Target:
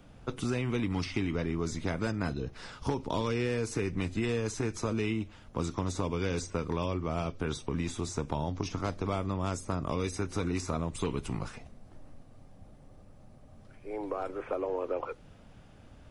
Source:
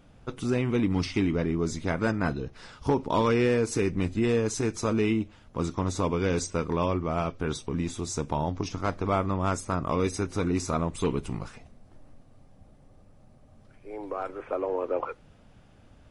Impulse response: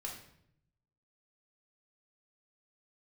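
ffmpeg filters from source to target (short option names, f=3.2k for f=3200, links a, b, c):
-filter_complex "[0:a]acrossover=split=110|720|2800[a][b][c][d];[a]acompressor=threshold=-39dB:ratio=4[e];[b]acompressor=threshold=-33dB:ratio=4[f];[c]acompressor=threshold=-42dB:ratio=4[g];[d]acompressor=threshold=-44dB:ratio=4[h];[e][f][g][h]amix=inputs=4:normalize=0,volume=1.5dB"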